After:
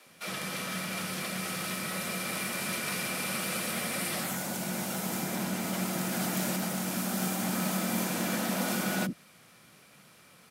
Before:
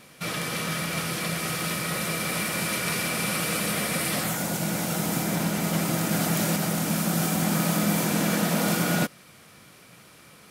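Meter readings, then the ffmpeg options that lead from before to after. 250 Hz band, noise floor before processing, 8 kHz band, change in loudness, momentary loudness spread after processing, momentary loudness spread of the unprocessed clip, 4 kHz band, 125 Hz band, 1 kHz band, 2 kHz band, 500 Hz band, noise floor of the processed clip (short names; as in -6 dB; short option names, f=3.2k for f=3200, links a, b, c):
-6.0 dB, -52 dBFS, -5.5 dB, -6.0 dB, 4 LU, 4 LU, -5.5 dB, -9.5 dB, -5.5 dB, -5.5 dB, -6.5 dB, -57 dBFS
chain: -filter_complex "[0:a]afreqshift=21,acrossover=split=320[a][b];[a]adelay=60[c];[c][b]amix=inputs=2:normalize=0,volume=-5.5dB" -ar 44100 -c:a ac3 -b:a 192k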